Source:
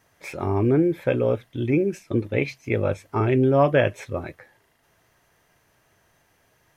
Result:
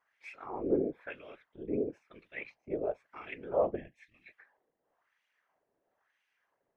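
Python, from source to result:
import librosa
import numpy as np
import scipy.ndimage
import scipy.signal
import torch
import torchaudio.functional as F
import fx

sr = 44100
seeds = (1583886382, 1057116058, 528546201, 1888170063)

y = fx.spec_box(x, sr, start_s=3.76, length_s=0.52, low_hz=300.0, high_hz=1700.0, gain_db=-24)
y = fx.wah_lfo(y, sr, hz=1.0, low_hz=410.0, high_hz=2600.0, q=2.1)
y = fx.whisperise(y, sr, seeds[0])
y = y * 10.0 ** (-8.0 / 20.0)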